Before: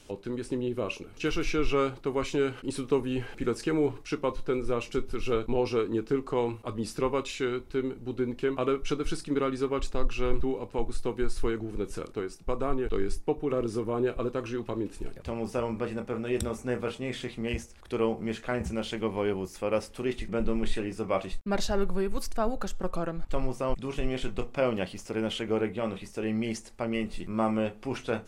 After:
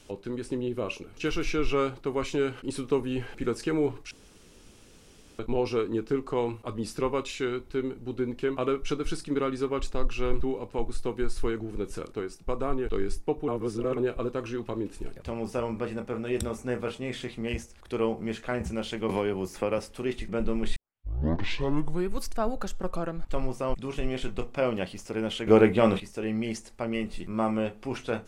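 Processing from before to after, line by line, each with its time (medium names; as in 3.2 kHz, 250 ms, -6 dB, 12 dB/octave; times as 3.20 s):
4.11–5.39 s: room tone
13.48–13.97 s: reverse
19.09–19.78 s: three bands compressed up and down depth 100%
20.76 s: tape start 1.34 s
25.47–26.00 s: gain +10 dB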